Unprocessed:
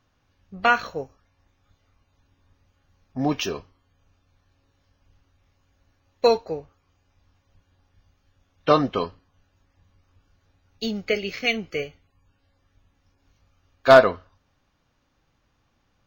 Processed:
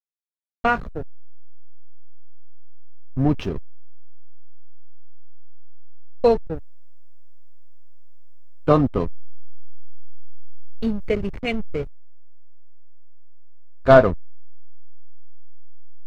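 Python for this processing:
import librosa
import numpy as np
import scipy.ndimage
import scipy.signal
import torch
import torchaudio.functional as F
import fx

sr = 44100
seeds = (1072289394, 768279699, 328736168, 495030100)

y = fx.backlash(x, sr, play_db=-24.0)
y = fx.riaa(y, sr, side='playback')
y = fx.quant_dither(y, sr, seeds[0], bits=12, dither='none')
y = y * librosa.db_to_amplitude(-1.0)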